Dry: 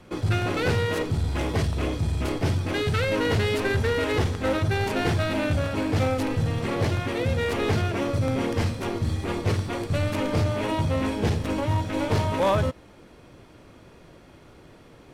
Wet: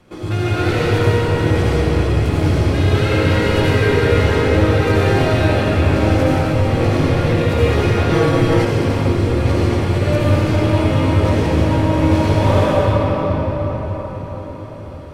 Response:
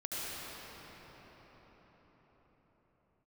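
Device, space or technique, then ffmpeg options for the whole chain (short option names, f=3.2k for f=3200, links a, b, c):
cathedral: -filter_complex "[1:a]atrim=start_sample=2205[a];[0:a][a]afir=irnorm=-1:irlink=0,asettb=1/sr,asplit=3[b][c][d];[b]atrim=end=8.104[e];[c]atrim=start=8.1:end=8.65,asetpts=PTS-STARTPTS,afade=t=in:d=0.004:c=qsin,afade=t=out:st=0.546:d=0.004:c=qsin,aecho=1:1:6.2:0.91,atrim=end_sample=24255[f];[d]atrim=start=8.646[g];[e][f]acrossfade=d=0.004:c1=hsin:c2=qsin[h];[h][g]acrossfade=d=0.004:c1=qsin:c2=hsin,volume=3.5dB"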